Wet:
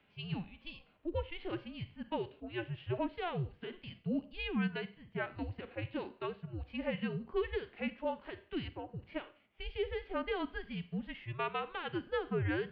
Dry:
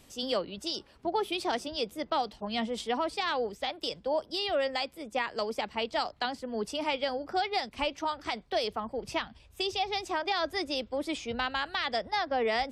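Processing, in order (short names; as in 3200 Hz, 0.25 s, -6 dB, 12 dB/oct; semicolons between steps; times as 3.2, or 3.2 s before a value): mistuned SSB -350 Hz 430–3400 Hz; Schroeder reverb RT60 0.42 s, combs from 31 ms, DRR 18 dB; harmonic-percussive split percussive -11 dB; gain -3 dB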